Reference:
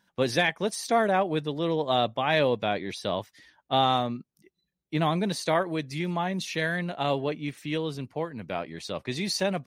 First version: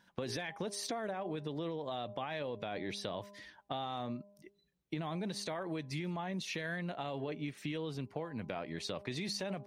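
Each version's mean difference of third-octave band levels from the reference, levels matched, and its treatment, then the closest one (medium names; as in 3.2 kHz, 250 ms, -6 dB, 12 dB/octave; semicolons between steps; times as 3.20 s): 4.5 dB: treble shelf 7.4 kHz -7 dB; de-hum 202.2 Hz, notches 5; peak limiter -22.5 dBFS, peak gain reduction 11 dB; compression 5:1, threshold -39 dBFS, peak gain reduction 11 dB; trim +2.5 dB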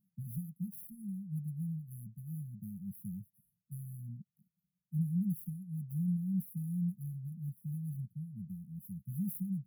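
21.5 dB: median filter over 5 samples; high-pass 160 Hz 12 dB/octave; compression, threshold -25 dBFS, peak gain reduction 7.5 dB; brick-wall FIR band-stop 210–10000 Hz; trim +3 dB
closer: first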